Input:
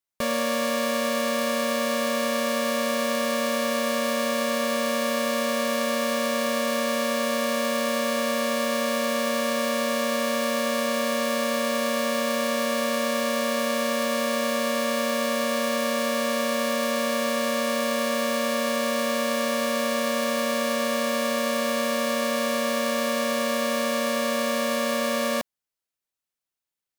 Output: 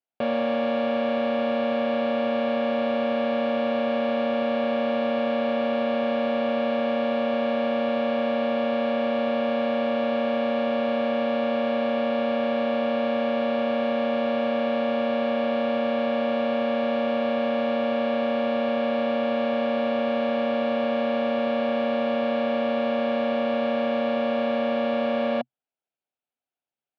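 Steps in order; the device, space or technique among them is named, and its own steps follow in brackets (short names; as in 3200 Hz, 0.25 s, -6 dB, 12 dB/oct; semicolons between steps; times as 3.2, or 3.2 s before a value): guitar amplifier (tube stage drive 20 dB, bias 0.45; tone controls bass -11 dB, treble -15 dB; speaker cabinet 89–3600 Hz, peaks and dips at 130 Hz +10 dB, 240 Hz +7 dB, 720 Hz +6 dB, 1100 Hz -9 dB, 1900 Hz -10 dB); gain +4 dB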